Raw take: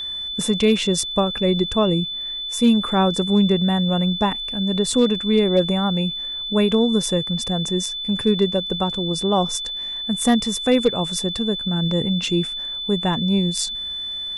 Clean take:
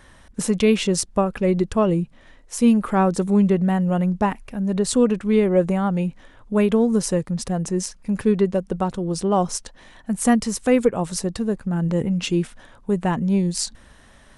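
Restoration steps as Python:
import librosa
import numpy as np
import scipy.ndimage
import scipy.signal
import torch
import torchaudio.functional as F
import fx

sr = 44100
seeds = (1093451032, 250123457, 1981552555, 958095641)

y = fx.fix_declip(x, sr, threshold_db=-8.0)
y = fx.fix_declick_ar(y, sr, threshold=6.5)
y = fx.notch(y, sr, hz=3500.0, q=30.0)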